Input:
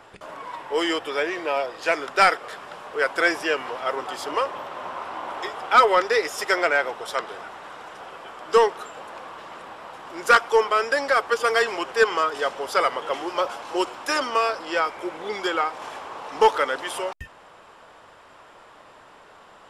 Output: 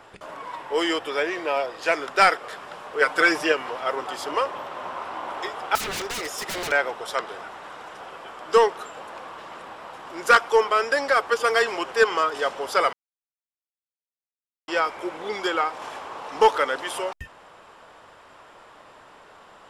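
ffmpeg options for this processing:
ffmpeg -i in.wav -filter_complex "[0:a]asettb=1/sr,asplit=3[link_01][link_02][link_03];[link_01]atrim=end=3.004[link_04];[link_02]atrim=start=3:end=3.52,asetpts=PTS-STARTPTS,afade=type=in:duration=0.004:curve=qsin,afade=type=out:start_time=0.516:duration=0.004:curve=qsin,aecho=1:1:6.6:0.87,atrim=end_sample=22932[link_05];[link_03]atrim=start=3.516[link_06];[link_04][link_05]acrossfade=duration=0.004:curve1=hsin:curve2=qsin[link_07];[link_07][link_06]acrossfade=duration=0.004:curve1=qsin:curve2=hsin,asettb=1/sr,asplit=3[link_08][link_09][link_10];[link_08]atrim=end=5.754[link_11];[link_09]atrim=start=5.75:end=6.72,asetpts=PTS-STARTPTS,afade=type=in:duration=0.004:curve=qsin,afade=type=out:start_time=0.966:duration=0.004:curve=qsin,aeval=exprs='0.0562*(abs(mod(val(0)/0.0562+3,4)-2)-1)':channel_layout=same[link_12];[link_10]atrim=start=6.716[link_13];[link_11][link_12]acrossfade=duration=0.004:curve1=hsin:curve2=qsin[link_14];[link_14][link_13]acrossfade=duration=0.004:curve1=qsin:curve2=hsin,asplit=3[link_15][link_16][link_17];[link_15]atrim=end=12.93,asetpts=PTS-STARTPTS,afade=type=out:start_time=12.926:duration=0.004:curve=hsin[link_18];[link_16]atrim=start=12.93:end=14.68,asetpts=PTS-STARTPTS,volume=0[link_19];[link_17]atrim=start=14.68,asetpts=PTS-STARTPTS,afade=type=in:duration=0.004:curve=hsin[link_20];[link_18][link_19][link_20]concat=n=3:v=0:a=1" out.wav

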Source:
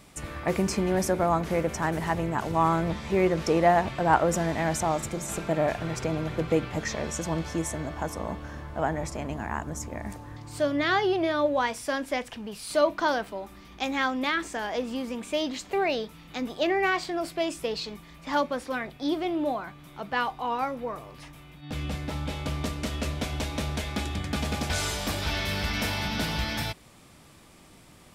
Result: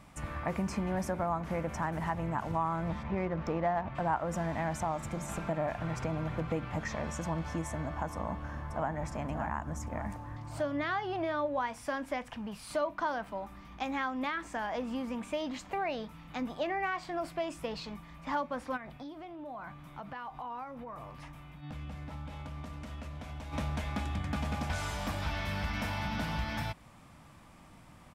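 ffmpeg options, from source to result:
ffmpeg -i in.wav -filter_complex "[0:a]asplit=3[link_01][link_02][link_03];[link_01]afade=type=out:start_time=3.02:duration=0.02[link_04];[link_02]adynamicsmooth=sensitivity=2:basefreq=2100,afade=type=in:start_time=3.02:duration=0.02,afade=type=out:start_time=3.94:duration=0.02[link_05];[link_03]afade=type=in:start_time=3.94:duration=0.02[link_06];[link_04][link_05][link_06]amix=inputs=3:normalize=0,asplit=2[link_07][link_08];[link_08]afade=type=in:start_time=8.12:duration=0.01,afade=type=out:start_time=8.91:duration=0.01,aecho=0:1:580|1160|1740|2320|2900:0.398107|0.179148|0.0806167|0.0362775|0.0163249[link_09];[link_07][link_09]amix=inputs=2:normalize=0,asplit=3[link_10][link_11][link_12];[link_10]afade=type=out:start_time=18.76:duration=0.02[link_13];[link_11]acompressor=threshold=-37dB:ratio=12:attack=3.2:release=140:knee=1:detection=peak,afade=type=in:start_time=18.76:duration=0.02,afade=type=out:start_time=23.52:duration=0.02[link_14];[link_12]afade=type=in:start_time=23.52:duration=0.02[link_15];[link_13][link_14][link_15]amix=inputs=3:normalize=0,equalizer=frequency=400:width_type=o:width=0.67:gain=-10,equalizer=frequency=1000:width_type=o:width=0.67:gain=3,equalizer=frequency=4000:width_type=o:width=0.67:gain=-3,acompressor=threshold=-31dB:ratio=2.5,highshelf=frequency=3000:gain=-10.5" out.wav

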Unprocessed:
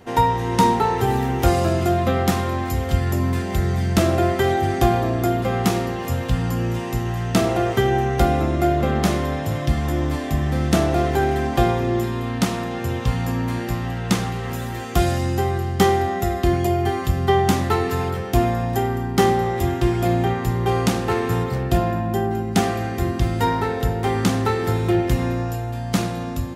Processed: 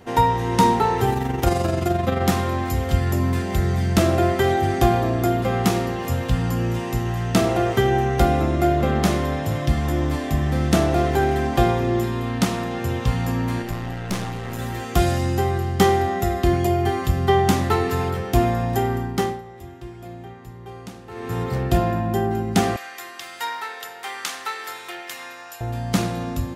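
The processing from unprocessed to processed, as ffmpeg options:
ffmpeg -i in.wav -filter_complex "[0:a]asplit=3[link_01][link_02][link_03];[link_01]afade=type=out:start_time=1.1:duration=0.02[link_04];[link_02]tremolo=f=23:d=0.519,afade=type=in:start_time=1.1:duration=0.02,afade=type=out:start_time=2.2:duration=0.02[link_05];[link_03]afade=type=in:start_time=2.2:duration=0.02[link_06];[link_04][link_05][link_06]amix=inputs=3:normalize=0,asettb=1/sr,asplit=3[link_07][link_08][link_09];[link_07]atrim=end=13.624[link_10];[link_08]atrim=start=13.62:end=14.59,asetpts=PTS-STARTPTS,afade=type=in:duration=0.004:curve=qsin,afade=type=out:start_time=0.966:duration=0.004:curve=qsin,aeval=exprs='(tanh(10*val(0)+0.6)-tanh(0.6))/10':channel_layout=same[link_11];[link_09]atrim=start=14.586[link_12];[link_10][link_11]acrossfade=duration=0.004:curve1=hsin:curve2=qsin[link_13];[link_13][link_12]acrossfade=duration=0.004:curve1=qsin:curve2=hsin,asettb=1/sr,asplit=3[link_14][link_15][link_16];[link_14]atrim=end=22.764[link_17];[link_15]atrim=start=22.76:end=25.61,asetpts=PTS-STARTPTS,afade=type=in:duration=0.004:curve=qsin,afade=type=out:start_time=2.846:duration=0.004:curve=qsin,highpass=1300[link_18];[link_16]atrim=start=25.606[link_19];[link_17][link_18]acrossfade=duration=0.004:curve1=hsin:curve2=qsin[link_20];[link_20][link_19]acrossfade=duration=0.004:curve1=qsin:curve2=hsin,asplit=3[link_21][link_22][link_23];[link_21]atrim=end=19.42,asetpts=PTS-STARTPTS,afade=type=out:start_time=18.96:duration=0.46:silence=0.125893[link_24];[link_22]atrim=start=19.42:end=21.11,asetpts=PTS-STARTPTS,volume=-18dB[link_25];[link_23]atrim=start=21.11,asetpts=PTS-STARTPTS,afade=type=in:duration=0.46:silence=0.125893[link_26];[link_24][link_25][link_26]concat=n=3:v=0:a=1" out.wav

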